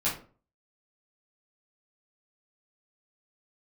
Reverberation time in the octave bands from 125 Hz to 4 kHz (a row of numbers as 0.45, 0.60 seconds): 0.50, 0.45, 0.45, 0.35, 0.30, 0.25 seconds